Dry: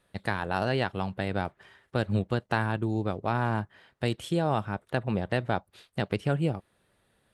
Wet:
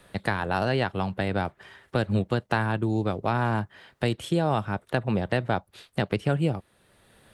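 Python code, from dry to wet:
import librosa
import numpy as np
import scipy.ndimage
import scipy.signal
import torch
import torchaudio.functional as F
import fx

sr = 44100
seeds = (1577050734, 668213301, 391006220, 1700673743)

y = fx.band_squash(x, sr, depth_pct=40)
y = F.gain(torch.from_numpy(y), 2.5).numpy()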